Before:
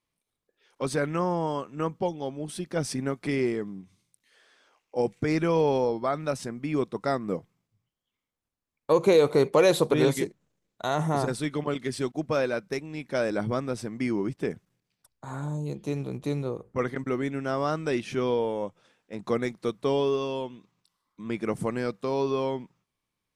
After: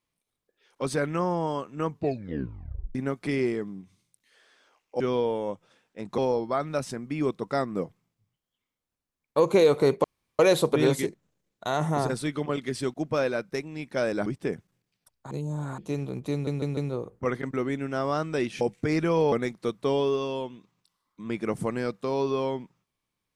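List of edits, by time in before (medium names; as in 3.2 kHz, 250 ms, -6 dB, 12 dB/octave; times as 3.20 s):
1.86 s: tape stop 1.09 s
5.00–5.71 s: swap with 18.14–19.32 s
9.57 s: insert room tone 0.35 s
13.44–14.24 s: delete
15.29–15.76 s: reverse
16.30 s: stutter 0.15 s, 4 plays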